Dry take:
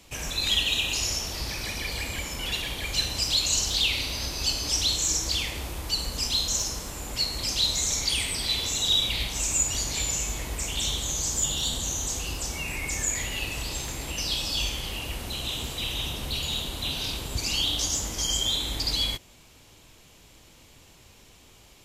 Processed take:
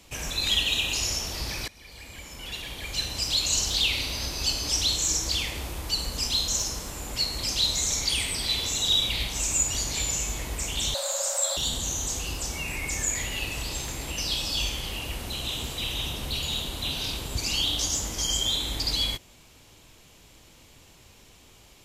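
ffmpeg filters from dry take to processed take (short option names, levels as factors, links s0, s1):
-filter_complex "[0:a]asettb=1/sr,asplit=3[s0][s1][s2];[s0]atrim=end=10.944[s3];[s1]atrim=start=10.94:end=11.57,asetpts=PTS-STARTPTS,afade=t=in:d=0.004:c=qsin,afade=t=out:st=0.626:d=0.004:c=qsin,afreqshift=500[s4];[s2]atrim=start=11.566[s5];[s3][s4]acrossfade=d=0.004:c1=hsin:c2=qsin[s6];[s6][s5]acrossfade=d=0.004:c1=qsin:c2=hsin,asplit=2[s7][s8];[s7]atrim=end=1.68,asetpts=PTS-STARTPTS,afade=t=out:st=1.676:d=0.004:c=hsin:silence=0.0749894[s9];[s8]atrim=start=1.68,asetpts=PTS-STARTPTS,afade=t=in:d=1.92:silence=0.0749894[s10];[s9][s10]concat=n=2:v=0:a=1"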